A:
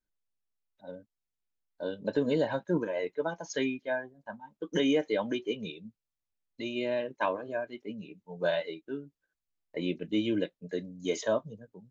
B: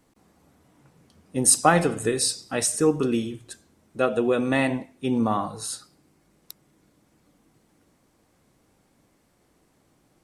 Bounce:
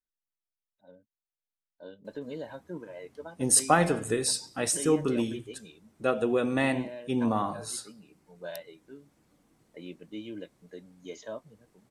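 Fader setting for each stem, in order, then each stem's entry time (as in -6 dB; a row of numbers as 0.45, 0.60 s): -11.0, -4.0 dB; 0.00, 2.05 s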